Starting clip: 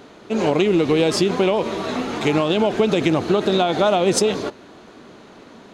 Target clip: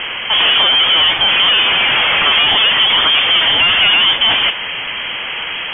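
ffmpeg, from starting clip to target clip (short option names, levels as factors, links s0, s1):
-filter_complex "[0:a]asplit=2[s0][s1];[s1]highpass=f=720:p=1,volume=39.8,asoftclip=type=tanh:threshold=0.473[s2];[s0][s2]amix=inputs=2:normalize=0,lowpass=f=1500:p=1,volume=0.501,crystalizer=i=6:c=0,lowpass=f=3000:t=q:w=0.5098,lowpass=f=3000:t=q:w=0.6013,lowpass=f=3000:t=q:w=0.9,lowpass=f=3000:t=q:w=2.563,afreqshift=-3500"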